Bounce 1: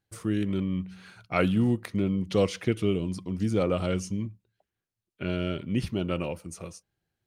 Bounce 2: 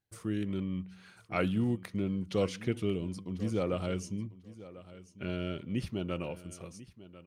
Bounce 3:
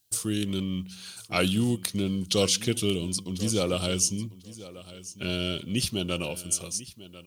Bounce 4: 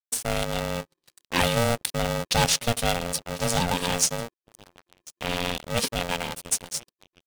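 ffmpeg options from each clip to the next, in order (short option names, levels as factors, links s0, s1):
-af "aecho=1:1:1045|2090:0.141|0.0226,volume=0.501"
-af "aexciter=amount=5:drive=7.4:freq=2900,volume=1.68"
-af "aeval=exprs='sgn(val(0))*max(abs(val(0))-0.0106,0)':c=same,anlmdn=0.00398,aeval=exprs='val(0)*sgn(sin(2*PI*350*n/s))':c=same,volume=1.41"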